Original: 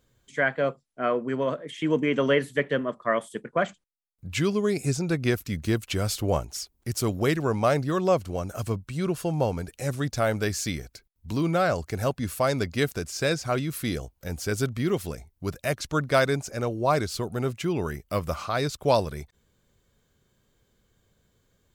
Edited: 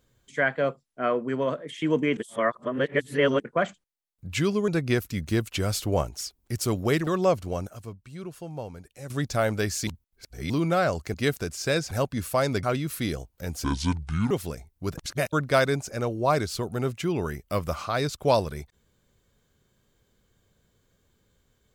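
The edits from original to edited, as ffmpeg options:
-filter_complex "[0:a]asplit=16[a][b][c][d][e][f][g][h][i][j][k][l][m][n][o][p];[a]atrim=end=2.172[q];[b]atrim=start=2.168:end=3.402,asetpts=PTS-STARTPTS,areverse[r];[c]atrim=start=3.398:end=4.682[s];[d]atrim=start=5.038:end=7.432[t];[e]atrim=start=7.898:end=8.502[u];[f]atrim=start=8.498:end=9.932,asetpts=PTS-STARTPTS,volume=-11dB[v];[g]atrim=start=9.928:end=10.702[w];[h]atrim=start=10.698:end=11.332,asetpts=PTS-STARTPTS,areverse[x];[i]atrim=start=11.328:end=11.972[y];[j]atrim=start=12.688:end=13.462[z];[k]atrim=start=11.968:end=12.692[aa];[l]atrim=start=13.458:end=14.474[ab];[m]atrim=start=14.47:end=14.91,asetpts=PTS-STARTPTS,asetrate=29106,aresample=44100[ac];[n]atrim=start=14.906:end=15.582[ad];[o]atrim=start=15.578:end=15.932,asetpts=PTS-STARTPTS,areverse[ae];[p]atrim=start=15.928[af];[q][r]acrossfade=d=0.004:c1=hsin:c2=hsin[ag];[ag][s]acrossfade=d=0.004:c1=hsin:c2=hsin[ah];[ah][t]acrossfade=d=0.004:c1=hsin:c2=hsin[ai];[ai][u]acrossfade=d=0.004:c1=hsin:c2=hsin[aj];[aj][v]acrossfade=d=0.004:c1=hsin:c2=hsin[ak];[ak][w]acrossfade=d=0.004:c1=hsin:c2=hsin[al];[al][x]acrossfade=d=0.004:c1=hsin:c2=hsin[am];[am][y]acrossfade=d=0.004:c1=hsin:c2=hsin[an];[an][z]acrossfade=d=0.004:c1=hsin:c2=hsin[ao];[ao][aa]acrossfade=d=0.004:c1=hsin:c2=hsin[ap];[ap][ab]acrossfade=d=0.004:c1=hsin:c2=hsin[aq];[aq][ac]acrossfade=d=0.004:c1=hsin:c2=hsin[ar];[ar][ad]acrossfade=d=0.004:c1=hsin:c2=hsin[as];[as][ae]acrossfade=d=0.004:c1=hsin:c2=hsin[at];[at][af]acrossfade=d=0.004:c1=hsin:c2=hsin"

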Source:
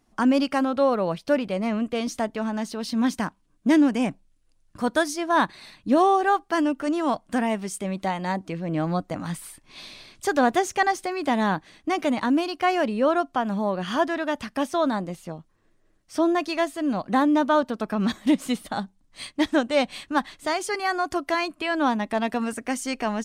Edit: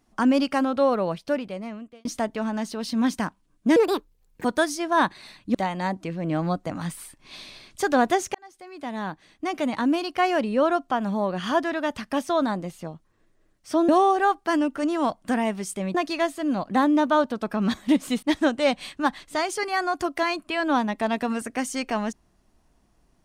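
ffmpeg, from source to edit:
-filter_complex "[0:a]asplit=9[a][b][c][d][e][f][g][h][i];[a]atrim=end=2.05,asetpts=PTS-STARTPTS,afade=t=out:st=0.97:d=1.08[j];[b]atrim=start=2.05:end=3.764,asetpts=PTS-STARTPTS,afade=t=in:d=0.004:c=hsin[k];[c]atrim=start=3.76:end=4.83,asetpts=PTS-STARTPTS,asetrate=68796,aresample=44100,atrim=end_sample=30248,asetpts=PTS-STARTPTS[l];[d]atrim=start=4.826:end=5.932[m];[e]atrim=start=7.988:end=10.79,asetpts=PTS-STARTPTS,afade=t=out:st=2.798:d=0.004:c=hsin[n];[f]atrim=start=10.79:end=16.332,asetpts=PTS-STARTPTS,afade=t=in:d=1.68[o];[g]atrim=start=5.928:end=7.992[p];[h]atrim=start=16.328:end=18.612[q];[i]atrim=start=19.338[r];[j][k]concat=n=2:v=0:a=1[s];[s][l]acrossfade=d=0.004:c1=hsin:c2=hsin[t];[t][m]acrossfade=d=0.004:c1=hsin:c2=hsin[u];[n][o]concat=n=2:v=0:a=1[v];[u][v]acrossfade=d=0.004:c1=hsin:c2=hsin[w];[w][p]acrossfade=d=0.004:c1=hsin:c2=hsin[x];[x][q]acrossfade=d=0.004:c1=hsin:c2=hsin[y];[y][r]acrossfade=d=0.004:c1=hsin:c2=hsin"

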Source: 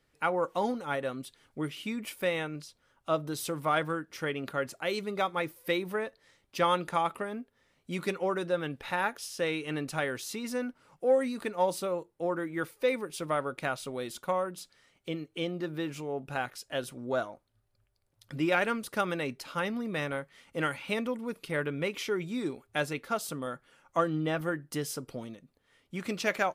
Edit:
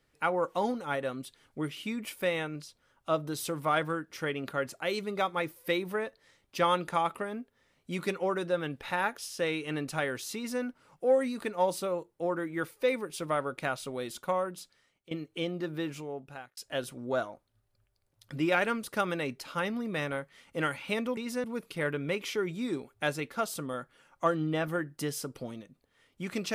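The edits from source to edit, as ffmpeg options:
-filter_complex "[0:a]asplit=5[a][b][c][d][e];[a]atrim=end=15.11,asetpts=PTS-STARTPTS,afade=t=out:st=14.51:d=0.6:silence=0.141254[f];[b]atrim=start=15.11:end=16.57,asetpts=PTS-STARTPTS,afade=t=in:d=0.004:c=hsin:silence=0.141254,afade=t=out:st=0.76:d=0.7[g];[c]atrim=start=16.57:end=21.172,asetpts=PTS-STARTPTS,afade=t=in:d=0.004:c=hsin[h];[d]atrim=start=10.348:end=10.622[i];[e]atrim=start=21.168[j];[f][g][h]concat=n=3:v=0:a=1[k];[k][i]acrossfade=d=0.004:c1=hsin:c2=hsin[l];[l][j]acrossfade=d=0.004:c1=hsin:c2=hsin"

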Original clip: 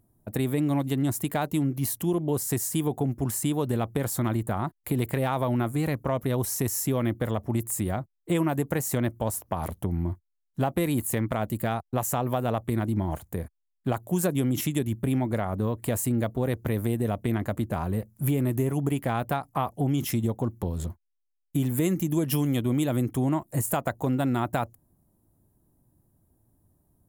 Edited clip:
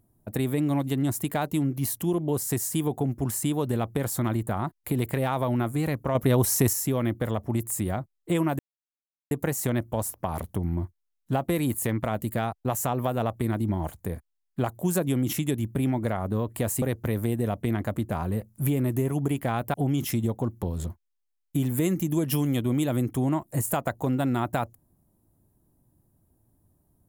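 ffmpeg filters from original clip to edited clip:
-filter_complex "[0:a]asplit=6[a][b][c][d][e][f];[a]atrim=end=6.152[g];[b]atrim=start=6.148:end=6.732,asetpts=PTS-STARTPTS,volume=5.5dB[h];[c]atrim=start=6.728:end=8.59,asetpts=PTS-STARTPTS,afade=t=out:st=1.858:d=0.004:c=hsin,apad=pad_dur=0.72[i];[d]atrim=start=8.59:end=16.102,asetpts=PTS-STARTPTS,afade=t=in:d=0.004:c=hsin[j];[e]atrim=start=16.428:end=19.352[k];[f]atrim=start=19.738[l];[g][h]acrossfade=d=0.004:c1=hsin:c2=hsin[m];[i][j]concat=n=2:v=0:a=1[n];[m][n]acrossfade=d=0.004:c1=hsin:c2=hsin[o];[o][k]acrossfade=d=0.004:c1=hsin:c2=hsin[p];[p][l]acrossfade=d=0.004:c1=hsin:c2=hsin"

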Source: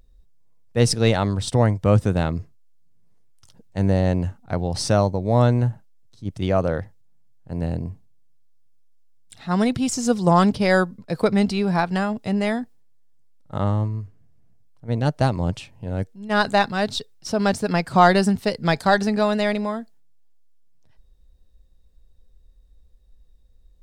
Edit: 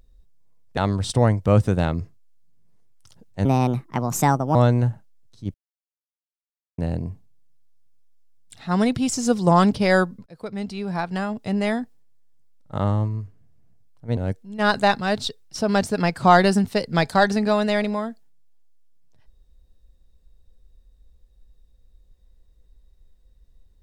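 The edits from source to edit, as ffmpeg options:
-filter_complex "[0:a]asplit=8[a][b][c][d][e][f][g][h];[a]atrim=end=0.772[i];[b]atrim=start=1.148:end=3.834[j];[c]atrim=start=3.83:end=5.35,asetpts=PTS-STARTPTS,asetrate=60858,aresample=44100[k];[d]atrim=start=5.346:end=6.34,asetpts=PTS-STARTPTS,afade=t=out:st=0.99:d=0.004:c=hsin[l];[e]atrim=start=6.34:end=7.58,asetpts=PTS-STARTPTS,volume=0[m];[f]atrim=start=7.58:end=11.06,asetpts=PTS-STARTPTS,afade=t=in:d=0.004:c=hsin,afade=t=out:st=3.476:d=0.004:c=hsin:silence=0.0794328[n];[g]atrim=start=11.06:end=14.972,asetpts=PTS-STARTPTS,afade=t=in:d=1.47:silence=0.0794328[o];[h]atrim=start=15.878[p];[i][j]acrossfade=d=0.004:c1=hsin:c2=hsin[q];[q][k]acrossfade=d=0.004:c1=hsin:c2=hsin[r];[l][m][n][o]concat=n=4:v=0:a=1[s];[r][s]acrossfade=d=0.004:c1=hsin:c2=hsin[t];[t][p]acrossfade=d=0.004:c1=hsin:c2=hsin"

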